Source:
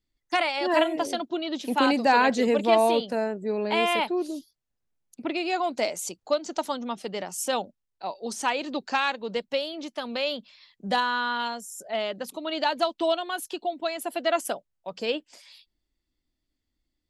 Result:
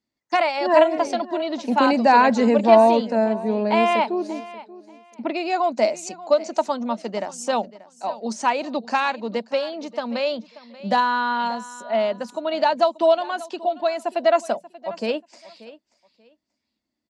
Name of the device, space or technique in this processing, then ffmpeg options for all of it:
car door speaker: -af "highpass=97,equalizer=f=220:t=q:w=4:g=10,equalizer=f=630:t=q:w=4:g=7,equalizer=f=960:t=q:w=4:g=5,equalizer=f=3300:t=q:w=4:g=-7,lowpass=f=7400:w=0.5412,lowpass=f=7400:w=1.3066,lowshelf=f=160:g=-5.5,bandreject=f=60:t=h:w=6,bandreject=f=120:t=h:w=6,bandreject=f=180:t=h:w=6,aecho=1:1:584|1168:0.126|0.0264,volume=1.26"

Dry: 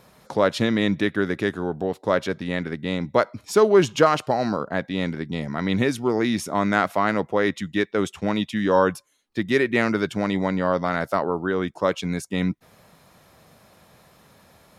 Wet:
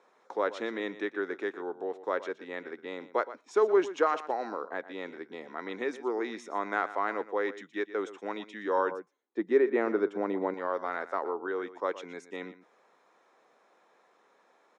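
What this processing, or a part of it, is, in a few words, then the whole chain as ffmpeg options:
phone speaker on a table: -filter_complex "[0:a]highpass=f=360:w=0.5412,highpass=f=360:w=1.3066,equalizer=f=610:t=q:w=4:g=-7,equalizer=f=2900:t=q:w=4:g=-5,equalizer=f=4600:t=q:w=4:g=-9,lowpass=f=7300:w=0.5412,lowpass=f=7300:w=1.3066,highshelf=f=2500:g=-10,aecho=1:1:119:0.178,asettb=1/sr,asplit=3[s0][s1][s2];[s0]atrim=end=8.914[s3];[s1]atrim=start=8.91:end=10.54,asetpts=PTS-STARTPTS,afade=t=in:d=0.004:c=qsin,afade=t=out:st=1.626:d=0.004:c=qsin,tiltshelf=f=1200:g=8.5[s4];[s2]atrim=start=10.536[s5];[s3][s4]acrossfade=d=0.004:c1=hsin:c2=qsin[s6];[s6][s5]acrossfade=d=0.004:c1=qsin:c2=hsin,volume=0.531"

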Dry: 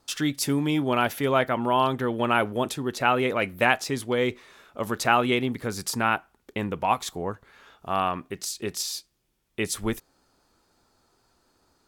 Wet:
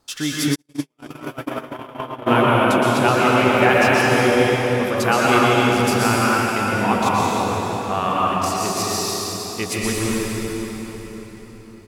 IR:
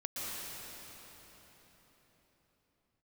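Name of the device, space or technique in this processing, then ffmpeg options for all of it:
cave: -filter_complex "[0:a]aecho=1:1:336:0.178[s0];[1:a]atrim=start_sample=2205[s1];[s0][s1]afir=irnorm=-1:irlink=0,asplit=3[s2][s3][s4];[s2]afade=t=out:st=0.54:d=0.02[s5];[s3]agate=range=0.00112:threshold=0.158:ratio=16:detection=peak,afade=t=in:st=0.54:d=0.02,afade=t=out:st=2.26:d=0.02[s6];[s4]afade=t=in:st=2.26:d=0.02[s7];[s5][s6][s7]amix=inputs=3:normalize=0,volume=1.78"

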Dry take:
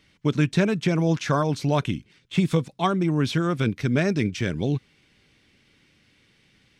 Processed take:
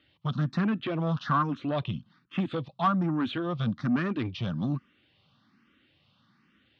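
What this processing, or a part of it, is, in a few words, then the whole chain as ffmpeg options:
barber-pole phaser into a guitar amplifier: -filter_complex "[0:a]asplit=2[s0][s1];[s1]afreqshift=1.2[s2];[s0][s2]amix=inputs=2:normalize=1,asoftclip=type=tanh:threshold=0.0841,highpass=100,equalizer=f=230:t=q:w=4:g=4,equalizer=f=430:t=q:w=4:g=-10,equalizer=f=1200:t=q:w=4:g=9,equalizer=f=2200:t=q:w=4:g=-10,lowpass=f=4000:w=0.5412,lowpass=f=4000:w=1.3066,asettb=1/sr,asplit=3[s3][s4][s5];[s3]atrim=end=0.574[s6];[s4]atrim=start=0.57:end=2.38,asetpts=PTS-STARTPTS,afade=t=in:d=0.004:c=qsin,afade=t=out:st=1.806:d=0.004:c=qsin,lowpass=5300[s7];[s5]atrim=start=2.376[s8];[s6][s7]acrossfade=d=0.004:c1=hsin:c2=qsin[s9];[s9][s8]acrossfade=d=0.004:c1=qsin:c2=hsin"

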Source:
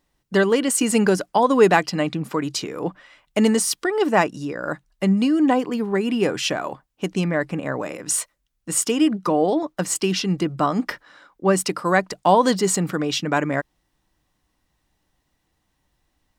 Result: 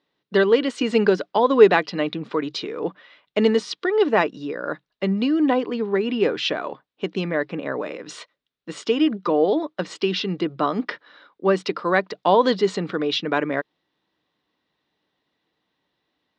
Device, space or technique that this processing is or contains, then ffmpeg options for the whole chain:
kitchen radio: -af "highpass=210,equalizer=f=440:t=q:w=4:g=5,equalizer=f=790:t=q:w=4:g=-3,equalizer=f=3700:t=q:w=4:g=6,lowpass=f=4400:w=0.5412,lowpass=f=4400:w=1.3066,volume=0.891"

